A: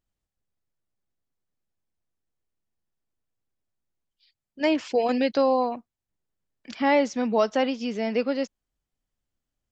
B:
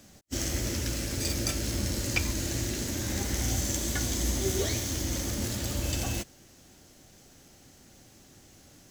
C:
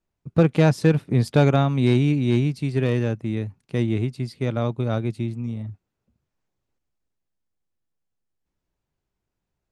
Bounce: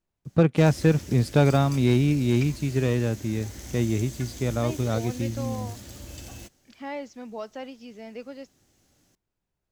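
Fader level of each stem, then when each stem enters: −14.0, −10.5, −2.0 decibels; 0.00, 0.25, 0.00 seconds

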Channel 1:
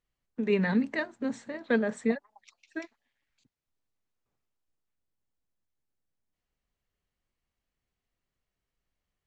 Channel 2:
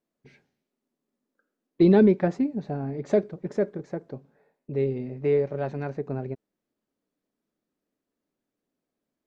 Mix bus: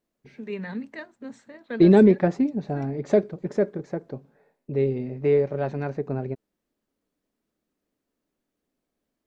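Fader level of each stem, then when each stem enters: −7.0, +2.5 decibels; 0.00, 0.00 seconds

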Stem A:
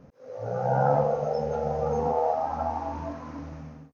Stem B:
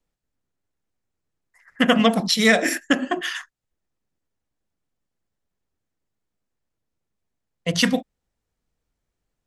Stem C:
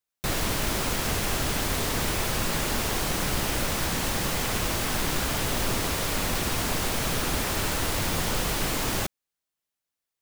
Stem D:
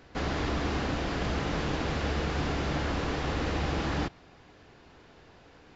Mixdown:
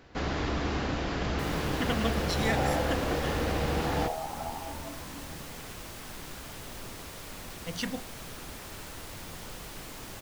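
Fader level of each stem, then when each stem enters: −8.5, −15.0, −15.5, −0.5 decibels; 1.80, 0.00, 1.15, 0.00 seconds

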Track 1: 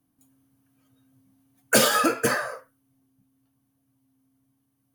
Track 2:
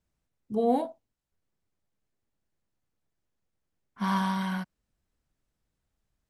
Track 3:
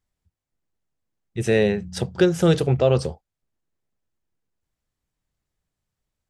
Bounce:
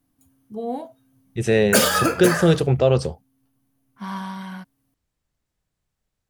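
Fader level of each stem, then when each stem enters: +1.5, −3.5, +1.0 decibels; 0.00, 0.00, 0.00 seconds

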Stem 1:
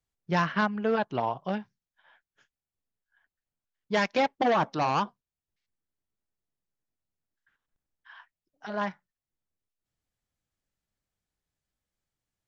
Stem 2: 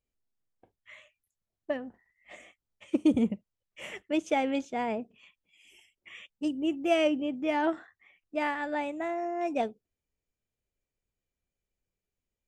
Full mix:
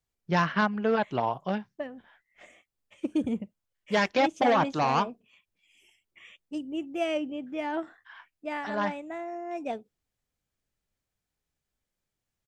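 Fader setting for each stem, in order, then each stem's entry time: +1.0, −4.0 decibels; 0.00, 0.10 seconds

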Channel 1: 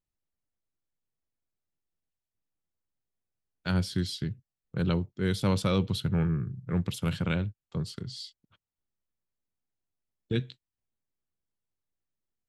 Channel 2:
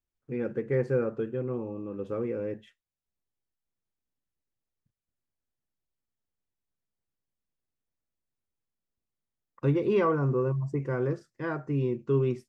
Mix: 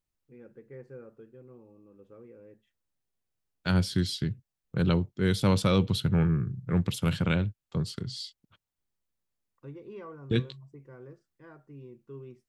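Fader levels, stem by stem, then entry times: +2.5, −19.0 decibels; 0.00, 0.00 seconds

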